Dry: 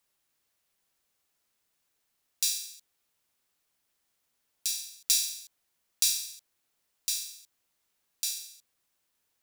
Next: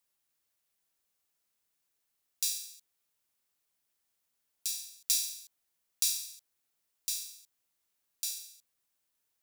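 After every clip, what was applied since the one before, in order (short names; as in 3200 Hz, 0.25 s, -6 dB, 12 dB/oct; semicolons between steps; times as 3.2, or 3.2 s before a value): high shelf 6800 Hz +5 dB; gain -6.5 dB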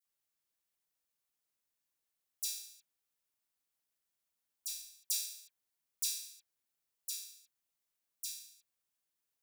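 dispersion lows, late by 49 ms, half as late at 2800 Hz; gain -6.5 dB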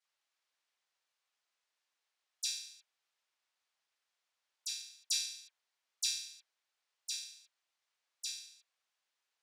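BPF 670–4900 Hz; gain +8 dB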